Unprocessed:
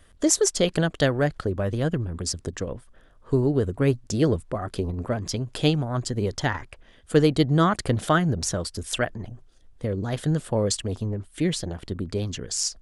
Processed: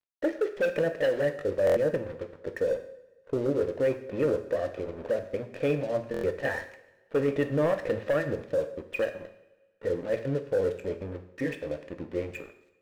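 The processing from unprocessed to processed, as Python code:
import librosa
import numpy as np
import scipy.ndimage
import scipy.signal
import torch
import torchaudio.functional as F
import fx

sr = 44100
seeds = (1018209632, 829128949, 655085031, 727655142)

p1 = fx.pitch_glide(x, sr, semitones=-2.5, runs='starting unshifted')
p2 = fx.env_lowpass(p1, sr, base_hz=1800.0, full_db=-17.5)
p3 = fx.formant_cascade(p2, sr, vowel='e')
p4 = fx.low_shelf(p3, sr, hz=200.0, db=-8.5)
p5 = fx.over_compress(p4, sr, threshold_db=-37.0, ratio=-0.5)
p6 = p4 + (p5 * librosa.db_to_amplitude(-2.0))
p7 = np.sign(p6) * np.maximum(np.abs(p6) - 10.0 ** (-59.0 / 20.0), 0.0)
p8 = fx.leveller(p7, sr, passes=2)
p9 = 10.0 ** (-20.0 / 20.0) * (np.abs((p8 / 10.0 ** (-20.0 / 20.0) + 3.0) % 4.0 - 2.0) - 1.0)
p10 = fx.rev_double_slope(p9, sr, seeds[0], early_s=0.63, late_s=1.7, knee_db=-18, drr_db=6.5)
y = fx.buffer_glitch(p10, sr, at_s=(1.65, 6.12), block=1024, repeats=4)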